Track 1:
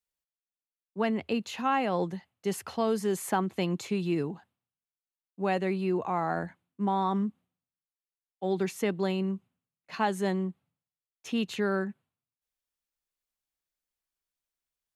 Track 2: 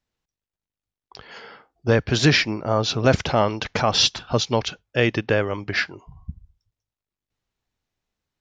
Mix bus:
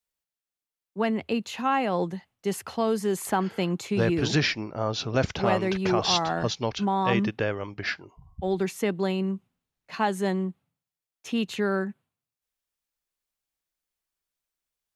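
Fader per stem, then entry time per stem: +2.5 dB, -7.0 dB; 0.00 s, 2.10 s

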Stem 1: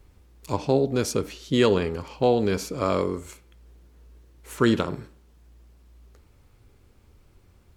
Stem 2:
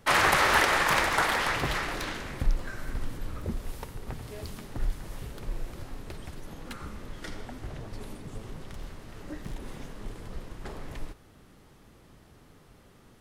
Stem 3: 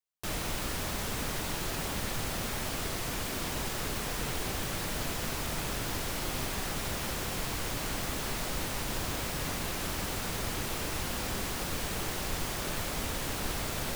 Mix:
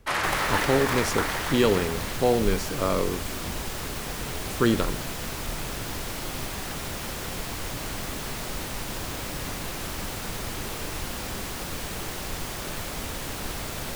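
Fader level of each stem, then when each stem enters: -1.5 dB, -4.0 dB, +1.0 dB; 0.00 s, 0.00 s, 0.00 s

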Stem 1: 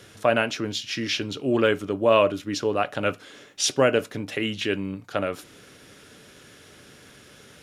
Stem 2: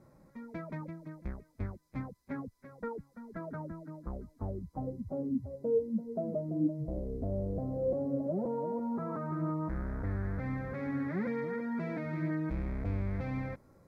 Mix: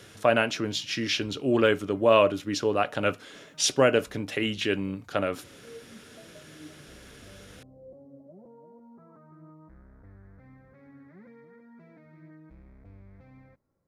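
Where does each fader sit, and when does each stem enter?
-1.0 dB, -17.0 dB; 0.00 s, 0.00 s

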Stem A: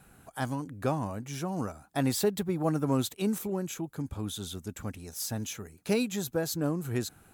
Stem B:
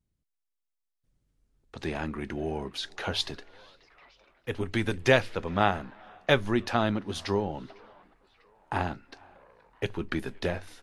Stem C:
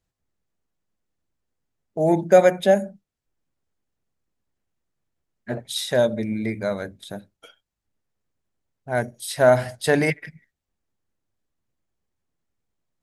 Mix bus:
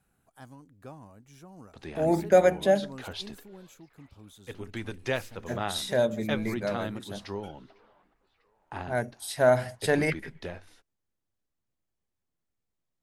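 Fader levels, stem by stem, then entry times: -16.0 dB, -8.5 dB, -5.5 dB; 0.00 s, 0.00 s, 0.00 s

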